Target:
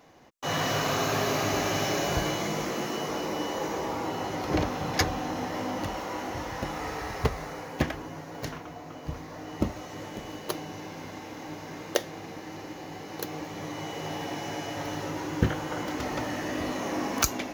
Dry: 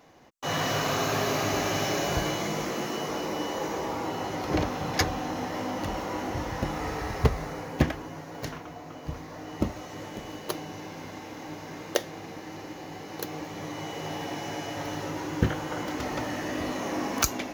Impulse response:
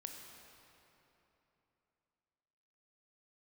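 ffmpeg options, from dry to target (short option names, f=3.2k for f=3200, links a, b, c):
-filter_complex "[0:a]asettb=1/sr,asplit=3[a][b][c];[a]atrim=end=5.874[d];[b]atrim=start=5.87:end=7.92,asetpts=PTS-STARTPTS,afade=t=in:d=0.004:c=qsin,afade=t=out:st=2.046:d=0.004:c=qsin,lowshelf=f=350:g=-6[e];[c]atrim=start=7.916[f];[d][e]acrossfade=d=0.004:c1=hsin:c2=qsin[g];[g][f]acrossfade=d=0.004:c1=qsin:c2=hsin"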